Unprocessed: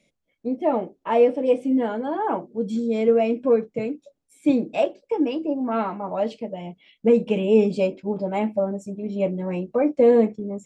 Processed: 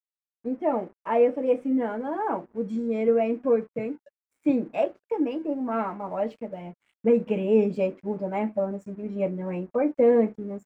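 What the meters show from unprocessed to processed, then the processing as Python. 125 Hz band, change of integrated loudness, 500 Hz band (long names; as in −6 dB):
−4.0 dB, −3.5 dB, −3.5 dB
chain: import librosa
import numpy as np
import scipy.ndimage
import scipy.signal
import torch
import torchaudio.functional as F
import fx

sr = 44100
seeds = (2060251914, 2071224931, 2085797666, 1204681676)

y = np.sign(x) * np.maximum(np.abs(x) - 10.0 ** (-52.5 / 20.0), 0.0)
y = fx.high_shelf_res(y, sr, hz=2700.0, db=-7.5, q=1.5)
y = F.gain(torch.from_numpy(y), -3.5).numpy()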